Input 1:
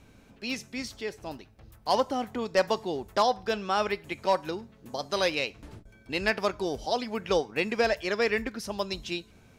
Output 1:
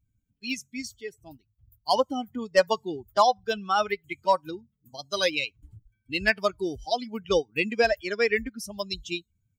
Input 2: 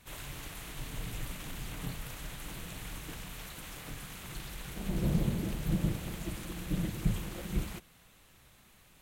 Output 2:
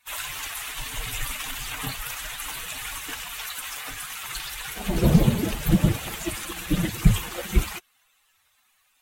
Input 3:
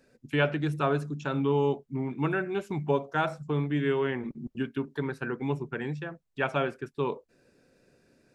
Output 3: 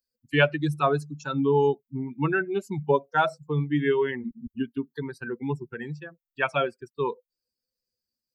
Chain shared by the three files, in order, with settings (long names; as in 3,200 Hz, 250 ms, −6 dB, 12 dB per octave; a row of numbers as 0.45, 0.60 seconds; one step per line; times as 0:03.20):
spectral dynamics exaggerated over time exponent 2
low-shelf EQ 450 Hz −4 dB
loudness normalisation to −27 LKFS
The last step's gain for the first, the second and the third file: +7.5, +19.5, +9.0 decibels